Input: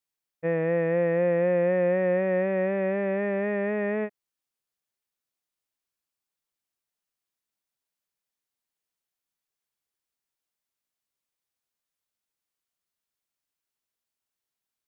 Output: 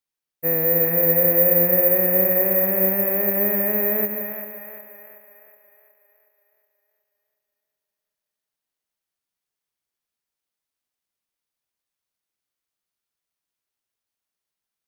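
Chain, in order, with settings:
echo with a time of its own for lows and highs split 580 Hz, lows 180 ms, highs 368 ms, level −6 dB
bad sample-rate conversion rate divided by 3×, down filtered, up zero stuff

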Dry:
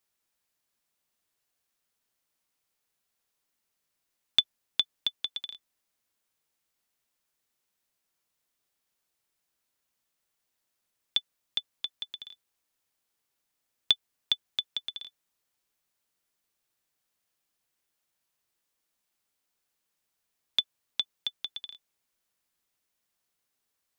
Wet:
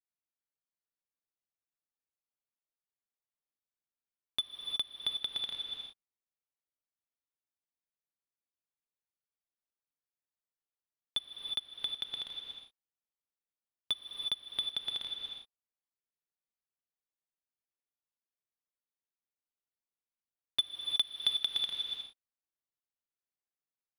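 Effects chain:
leveller curve on the samples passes 5
low-pass filter 1,400 Hz 6 dB per octave, from 0:20.59 3,500 Hz, from 0:21.66 2,100 Hz
reverb whose tail is shaped and stops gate 390 ms rising, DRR 3.5 dB
level −8.5 dB

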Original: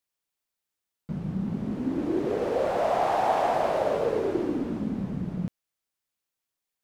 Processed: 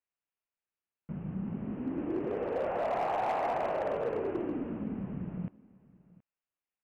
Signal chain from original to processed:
elliptic low-pass filter 2,800 Hz, stop band 40 dB
single-tap delay 724 ms −22.5 dB
gain into a clipping stage and back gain 20.5 dB
level −5.5 dB

